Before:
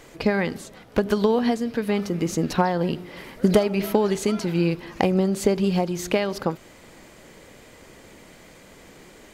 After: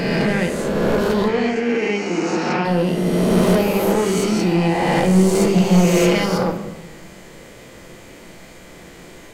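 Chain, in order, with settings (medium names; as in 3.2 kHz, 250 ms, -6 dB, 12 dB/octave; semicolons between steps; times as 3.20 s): reverse spectral sustain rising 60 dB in 2.19 s; 5.14–6.26 s: comb 5.9 ms, depth 71%; saturation -15 dBFS, distortion -12 dB; 1.28–2.65 s: cabinet simulation 250–6200 Hz, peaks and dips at 410 Hz +4 dB, 580 Hz -5 dB, 960 Hz -3 dB, 2.4 kHz +9 dB, 3.8 kHz -9 dB, 5.9 kHz -4 dB; simulated room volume 390 m³, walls mixed, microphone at 0.78 m; trim +1.5 dB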